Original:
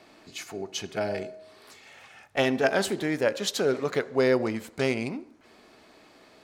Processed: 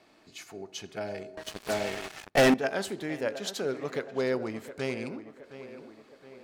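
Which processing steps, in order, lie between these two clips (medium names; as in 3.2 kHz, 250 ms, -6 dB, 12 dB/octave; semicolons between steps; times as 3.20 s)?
tape echo 717 ms, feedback 57%, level -12 dB, low-pass 2.7 kHz; 1.37–2.54 s: waveshaping leveller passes 5; trim -6.5 dB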